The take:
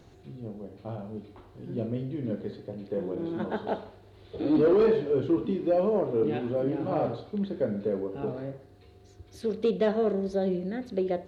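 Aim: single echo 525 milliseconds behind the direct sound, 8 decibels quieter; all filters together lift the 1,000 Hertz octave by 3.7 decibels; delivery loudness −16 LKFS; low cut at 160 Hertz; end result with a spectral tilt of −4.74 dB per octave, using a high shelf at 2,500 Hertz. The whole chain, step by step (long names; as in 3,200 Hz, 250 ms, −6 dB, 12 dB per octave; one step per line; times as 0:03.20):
high-pass filter 160 Hz
parametric band 1,000 Hz +5 dB
high-shelf EQ 2,500 Hz +3 dB
single-tap delay 525 ms −8 dB
level +11.5 dB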